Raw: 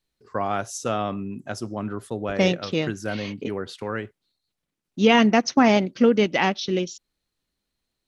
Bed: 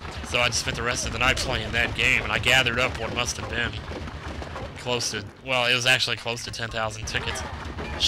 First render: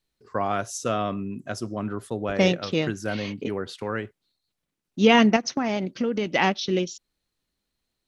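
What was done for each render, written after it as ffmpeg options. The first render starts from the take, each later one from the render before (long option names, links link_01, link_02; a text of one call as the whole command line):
ffmpeg -i in.wav -filter_complex "[0:a]asettb=1/sr,asplit=3[link_01][link_02][link_03];[link_01]atrim=end=0.524[link_04];[link_02]atrim=start=0.52:end=1.79,asetpts=PTS-STARTPTS,afade=type=in:duration=0.004:curve=qsin,afade=type=out:start_time=1.266:duration=0.004:curve=qsin,asuperstop=centerf=830:order=4:qfactor=6[link_05];[link_03]atrim=start=1.786[link_06];[link_04][link_05]acrossfade=duration=0.004:curve1=hsin:curve2=qsin[link_07];[link_07][link_06]acrossfade=duration=0.004:curve1=qsin:curve2=hsin,asettb=1/sr,asplit=3[link_08][link_09][link_10];[link_08]atrim=end=5.364[link_11];[link_09]atrim=start=5.36:end=6.27,asetpts=PTS-STARTPTS,afade=type=in:duration=0.004:curve=qsin,afade=type=out:start_time=0.906:duration=0.004:curve=qsin,acompressor=threshold=-22dB:ratio=4:attack=3.2:release=140:knee=1:detection=peak[link_12];[link_10]atrim=start=6.266[link_13];[link_11][link_12]acrossfade=duration=0.004:curve1=hsin:curve2=qsin[link_14];[link_14][link_13]acrossfade=duration=0.004:curve1=qsin:curve2=hsin" out.wav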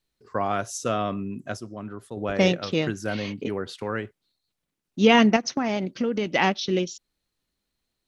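ffmpeg -i in.wav -filter_complex "[0:a]asplit=3[link_01][link_02][link_03];[link_01]atrim=end=1.572[link_04];[link_02]atrim=start=1.568:end=2.172,asetpts=PTS-STARTPTS,volume=-6.5dB[link_05];[link_03]atrim=start=2.168[link_06];[link_04][link_05]acrossfade=duration=0.004:curve1=hsin:curve2=hsin[link_07];[link_07][link_06]acrossfade=duration=0.004:curve1=hsin:curve2=hsin" out.wav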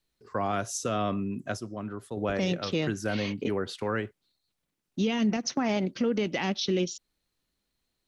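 ffmpeg -i in.wav -filter_complex "[0:a]acrossover=split=350|3000[link_01][link_02][link_03];[link_02]acompressor=threshold=-25dB:ratio=6[link_04];[link_01][link_04][link_03]amix=inputs=3:normalize=0,alimiter=limit=-18.5dB:level=0:latency=1:release=30" out.wav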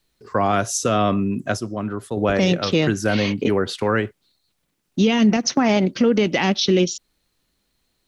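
ffmpeg -i in.wav -af "volume=10dB" out.wav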